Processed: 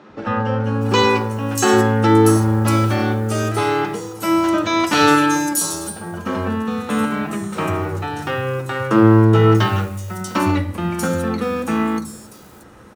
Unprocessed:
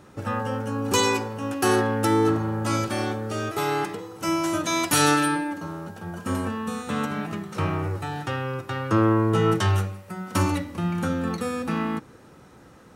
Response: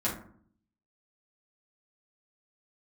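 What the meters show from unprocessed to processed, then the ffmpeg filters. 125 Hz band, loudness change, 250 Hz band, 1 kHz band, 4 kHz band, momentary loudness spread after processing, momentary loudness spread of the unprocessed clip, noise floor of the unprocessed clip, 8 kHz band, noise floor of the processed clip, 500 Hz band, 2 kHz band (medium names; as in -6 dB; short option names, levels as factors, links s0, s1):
+8.0 dB, +7.0 dB, +8.0 dB, +6.5 dB, +5.0 dB, 11 LU, 10 LU, -50 dBFS, +5.0 dB, -43 dBFS, +7.5 dB, +6.5 dB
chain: -filter_complex "[0:a]acrusher=bits=8:mode=log:mix=0:aa=0.000001,acrossover=split=160|5100[s0][s1][s2];[s0]adelay=100[s3];[s2]adelay=640[s4];[s3][s1][s4]amix=inputs=3:normalize=0,asplit=2[s5][s6];[1:a]atrim=start_sample=2205,lowpass=11000[s7];[s6][s7]afir=irnorm=-1:irlink=0,volume=0.15[s8];[s5][s8]amix=inputs=2:normalize=0,volume=1.88"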